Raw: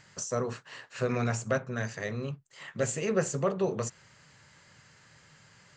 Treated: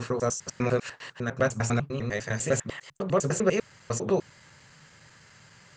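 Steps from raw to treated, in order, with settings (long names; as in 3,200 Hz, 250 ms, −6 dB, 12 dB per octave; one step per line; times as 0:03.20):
slices reordered back to front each 100 ms, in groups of 6
level +4 dB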